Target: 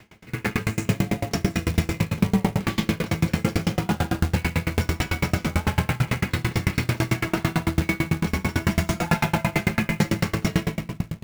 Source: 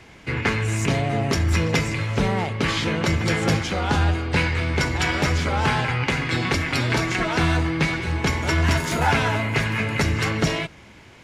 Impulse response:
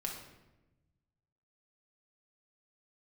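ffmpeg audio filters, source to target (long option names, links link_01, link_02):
-filter_complex "[0:a]asettb=1/sr,asplit=3[link_01][link_02][link_03];[link_01]atrim=end=8.644[link_04];[link_02]atrim=start=8.64:end=10.14,asetpts=PTS-STARTPTS,afade=type=in:duration=0.004:curve=qsin,afade=type=out:start_time=1.496:duration=0.004:curve=qsin,aecho=1:1:5.8:0.83,atrim=end_sample=66150[link_05];[link_03]atrim=start=10.136[link_06];[link_04][link_05]acrossfade=duration=0.004:curve1=hsin:curve2=qsin[link_07];[link_07][link_06]acrossfade=duration=0.004:curve1=qsin:curve2=hsin[link_08];[1:a]atrim=start_sample=2205,asetrate=22050,aresample=44100[link_09];[link_08][link_09]afir=irnorm=-1:irlink=0,asplit=2[link_10][link_11];[link_11]alimiter=limit=-8.5dB:level=0:latency=1:release=40,volume=2.5dB[link_12];[link_10][link_12]amix=inputs=2:normalize=0,acrusher=bits=3:mode=log:mix=0:aa=0.000001,equalizer=frequency=190:width_type=o:width=0.57:gain=9.5,aeval=exprs='val(0)*pow(10,-30*if(lt(mod(9*n/s,1),2*abs(9)/1000),1-mod(9*n/s,1)/(2*abs(9)/1000),(mod(9*n/s,1)-2*abs(9)/1000)/(1-2*abs(9)/1000))/20)':channel_layout=same,volume=-9dB"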